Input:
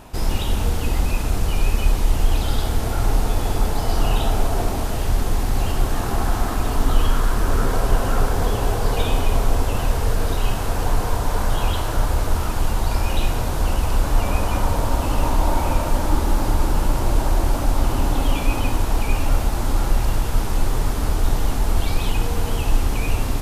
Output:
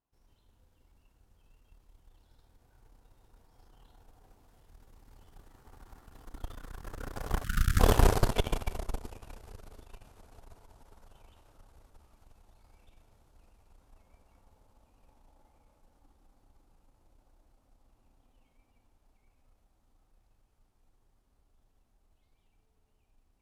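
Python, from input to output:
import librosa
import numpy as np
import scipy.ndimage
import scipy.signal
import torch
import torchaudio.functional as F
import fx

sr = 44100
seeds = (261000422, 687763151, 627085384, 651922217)

y = fx.doppler_pass(x, sr, speed_mps=26, closest_m=5.9, pass_at_s=7.94)
y = fx.spec_erase(y, sr, start_s=7.44, length_s=0.36, low_hz=220.0, high_hz=1200.0)
y = fx.cheby_harmonics(y, sr, harmonics=(3, 4, 5, 7), levels_db=(-14, -15, -19, -19), full_scale_db=-8.5)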